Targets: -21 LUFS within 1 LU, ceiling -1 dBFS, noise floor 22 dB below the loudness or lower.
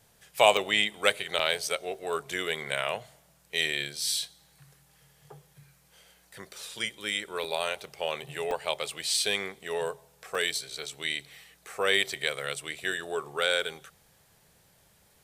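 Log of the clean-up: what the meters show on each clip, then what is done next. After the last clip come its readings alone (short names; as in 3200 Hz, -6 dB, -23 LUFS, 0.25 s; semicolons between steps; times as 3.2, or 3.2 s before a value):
dropouts 7; longest dropout 3.2 ms; loudness -29.0 LUFS; peak -4.5 dBFS; loudness target -21.0 LUFS
-> interpolate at 0.57/1.39/1.94/7.44/8.51/9.14/10.35, 3.2 ms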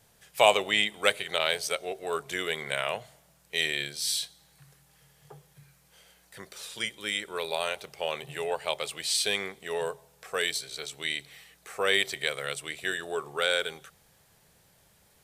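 dropouts 0; loudness -29.0 LUFS; peak -4.5 dBFS; loudness target -21.0 LUFS
-> gain +8 dB; limiter -1 dBFS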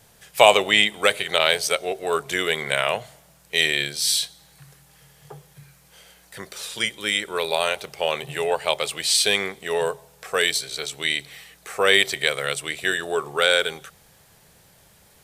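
loudness -21.5 LUFS; peak -1.0 dBFS; noise floor -55 dBFS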